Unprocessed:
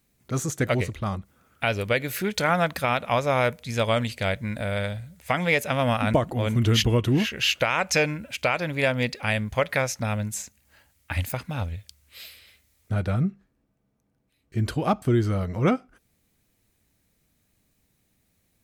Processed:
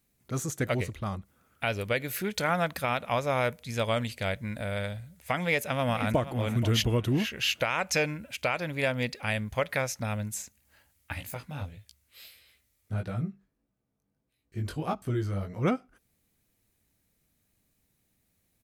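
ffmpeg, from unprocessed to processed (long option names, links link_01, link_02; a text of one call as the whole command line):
ffmpeg -i in.wav -filter_complex "[0:a]asplit=2[link_01][link_02];[link_02]afade=type=in:start_time=5.4:duration=0.01,afade=type=out:start_time=6.3:duration=0.01,aecho=0:1:480|960|1440:0.211349|0.0528372|0.0132093[link_03];[link_01][link_03]amix=inputs=2:normalize=0,asplit=3[link_04][link_05][link_06];[link_04]afade=type=out:start_time=11.13:duration=0.02[link_07];[link_05]flanger=delay=16.5:depth=4.4:speed=1.6,afade=type=in:start_time=11.13:duration=0.02,afade=type=out:start_time=15.62:duration=0.02[link_08];[link_06]afade=type=in:start_time=15.62:duration=0.02[link_09];[link_07][link_08][link_09]amix=inputs=3:normalize=0,equalizer=frequency=12000:width_type=o:width=0.66:gain=4,volume=-5dB" out.wav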